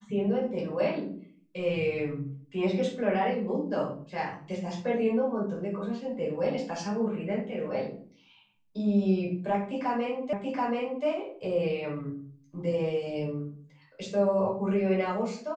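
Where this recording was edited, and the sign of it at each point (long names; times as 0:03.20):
0:10.33: the same again, the last 0.73 s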